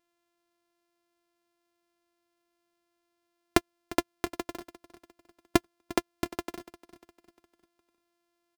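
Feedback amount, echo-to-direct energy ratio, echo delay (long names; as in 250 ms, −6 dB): 44%, −17.0 dB, 351 ms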